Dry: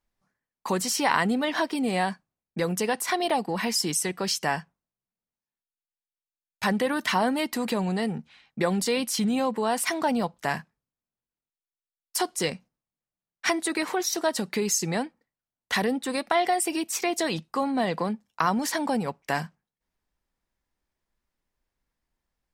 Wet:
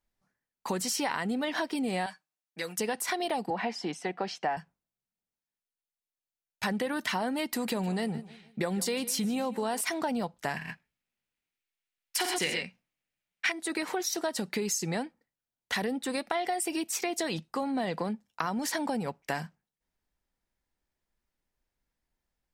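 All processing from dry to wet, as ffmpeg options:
-filter_complex "[0:a]asettb=1/sr,asplit=3[a][b][c];[a]atrim=end=2.064[d];[b]atrim=start=2.06:end=2.79,asetpts=PTS-STARTPTS,afade=t=in:d=0.004:c=qsin,afade=t=out:st=0.726:d=0.004:c=qsin,highpass=f=1.4k:p=1,aecho=1:1:6.5:0.58,atrim=end_sample=32193[e];[c]atrim=start=2.786[f];[d][e]acrossfade=d=0.004:c1=hsin:c2=qsin[g];[g][f]acrossfade=d=0.004:c1=qsin:c2=hsin,asettb=1/sr,asplit=3[h][i][j];[h]atrim=end=3.504[k];[i]atrim=start=3.5:end=4.57,asetpts=PTS-STARTPTS,afade=t=in:d=0.004:c=qsin,afade=t=out:st=1.066:d=0.004:c=qsin,highpass=210,lowpass=2.8k,equalizer=f=750:t=o:w=0.38:g=10.5[l];[j]atrim=start=4.566[m];[k][l]acrossfade=d=0.004:c1=hsin:c2=qsin[n];[n][m]acrossfade=d=0.004:c1=qsin:c2=hsin,asettb=1/sr,asplit=3[o][p][q];[o]atrim=end=7.494[r];[p]atrim=start=7.49:end=9.81,asetpts=PTS-STARTPTS,afade=t=in:d=0.004:c=qsin,afade=t=out:st=2.316:d=0.004:c=qsin,highshelf=f=10k:g=6.5,aecho=1:1:153|306|459:0.112|0.0449|0.018,atrim=end_sample=102312[s];[q]atrim=start=9.806[t];[r][s]acrossfade=d=0.004:c1=hsin:c2=qsin[u];[u][t]acrossfade=d=0.004:c1=qsin:c2=hsin,asettb=1/sr,asplit=3[v][w][x];[v]atrim=end=10.564[y];[w]atrim=start=10.56:end=13.52,asetpts=PTS-STARTPTS,afade=t=in:d=0.004:c=qsin,afade=t=out:st=2.956:d=0.004:c=qsin,equalizer=f=2.4k:t=o:w=1.3:g=12,aecho=1:1:50|87|111|128:0.447|0.376|0.376|0.596,atrim=end_sample=130536[z];[x]atrim=start=13.516[aa];[y][z]acrossfade=d=0.004:c1=hsin:c2=qsin[ab];[ab][aa]acrossfade=d=0.004:c1=qsin:c2=hsin,equalizer=f=1.1k:w=7.1:g=-4.5,acompressor=threshold=-25dB:ratio=6,volume=-2dB"

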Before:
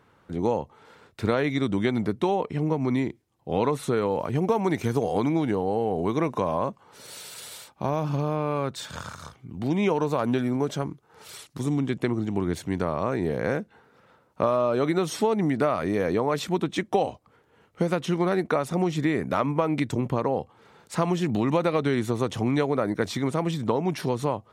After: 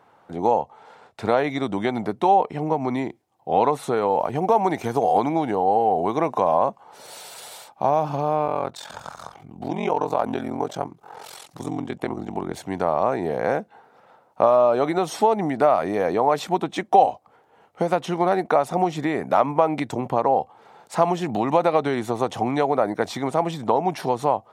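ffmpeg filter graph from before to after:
-filter_complex "[0:a]asettb=1/sr,asplit=3[a][b][c];[a]atrim=end=0.594[d];[b]atrim=start=0.59:end=1.26,asetpts=PTS-STARTPTS,afade=t=in:d=0.004:c=qsin,afade=t=out:st=0.666:d=0.004:c=qsin,lowpass=11k,equalizer=f=330:w=5.4:g=-6.5[e];[c]atrim=start=1.256[f];[d][e]acrossfade=d=0.004:c1=hsin:c2=qsin[g];[g][f]acrossfade=d=0.004:c1=qsin:c2=hsin,asettb=1/sr,asplit=3[h][i][j];[h]atrim=end=8.464[k];[i]atrim=start=8.46:end=12.54,asetpts=PTS-STARTPTS,afade=t=in:d=0.004:c=qsin,afade=t=out:st=4.076:d=0.004:c=qsin,acompressor=mode=upward:threshold=-32dB:ratio=2.5:attack=3.2:release=140:knee=2.83:detection=peak,aeval=exprs='val(0)*sin(2*PI*22*n/s)':c=same[l];[j]atrim=start=12.536[m];[k][l]acrossfade=d=0.004:c1=hsin:c2=qsin[n];[n][m]acrossfade=d=0.004:c1=qsin:c2=hsin,highpass=f=180:p=1,equalizer=f=760:w=1.8:g=13"

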